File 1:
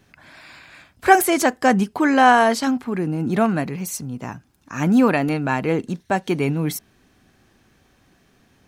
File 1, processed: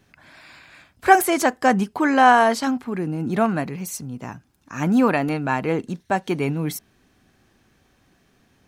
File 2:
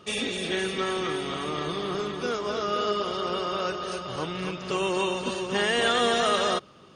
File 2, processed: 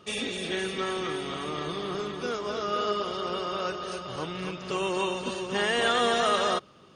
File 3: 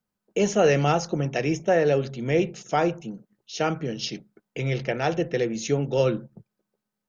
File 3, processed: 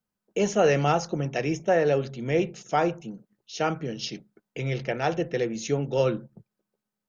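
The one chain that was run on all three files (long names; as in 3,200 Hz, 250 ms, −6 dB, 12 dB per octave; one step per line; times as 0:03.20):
dynamic equaliser 1,000 Hz, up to +3 dB, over −28 dBFS, Q 0.92
level −2.5 dB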